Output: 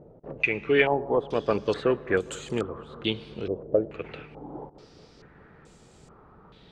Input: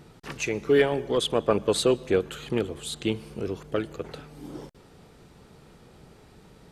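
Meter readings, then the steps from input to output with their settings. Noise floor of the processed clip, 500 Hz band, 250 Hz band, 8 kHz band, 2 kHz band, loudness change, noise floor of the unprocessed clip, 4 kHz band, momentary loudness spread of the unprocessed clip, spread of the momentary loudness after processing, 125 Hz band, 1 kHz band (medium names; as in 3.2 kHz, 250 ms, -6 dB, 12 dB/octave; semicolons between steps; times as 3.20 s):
-55 dBFS, -1.0 dB, -2.0 dB, -10.5 dB, +5.0 dB, -0.5 dB, -54 dBFS, -4.0 dB, 19 LU, 19 LU, -2.0 dB, +2.0 dB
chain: bucket-brigade echo 207 ms, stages 2048, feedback 77%, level -20 dB; step-sequenced low-pass 2.3 Hz 580–7500 Hz; trim -2.5 dB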